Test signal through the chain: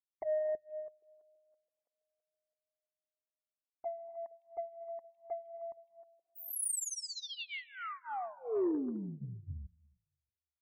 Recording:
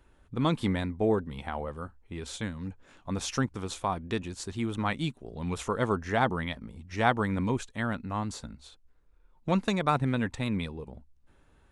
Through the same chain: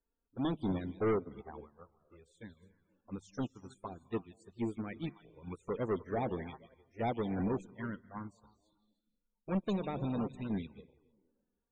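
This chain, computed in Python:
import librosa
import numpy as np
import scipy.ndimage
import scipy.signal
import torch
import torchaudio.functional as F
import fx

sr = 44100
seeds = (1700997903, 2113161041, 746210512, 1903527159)

p1 = fx.peak_eq(x, sr, hz=390.0, db=7.5, octaves=1.4)
p2 = fx.hum_notches(p1, sr, base_hz=50, count=3)
p3 = p2 + fx.echo_stepped(p2, sr, ms=157, hz=3100.0, octaves=-1.4, feedback_pct=70, wet_db=-6, dry=0)
p4 = fx.env_flanger(p3, sr, rest_ms=4.5, full_db=-20.5)
p5 = fx.peak_eq(p4, sr, hz=9400.0, db=7.0, octaves=0.91)
p6 = 10.0 ** (-20.5 / 20.0) * np.tanh(p5 / 10.0 ** (-20.5 / 20.0))
p7 = fx.rev_gated(p6, sr, seeds[0], gate_ms=330, shape='rising', drr_db=10.5)
p8 = np.clip(10.0 ** (24.5 / 20.0) * p7, -1.0, 1.0) / 10.0 ** (24.5 / 20.0)
p9 = fx.spec_topn(p8, sr, count=64)
p10 = fx.upward_expand(p9, sr, threshold_db=-41.0, expansion=2.5)
y = p10 * 10.0 ** (-2.5 / 20.0)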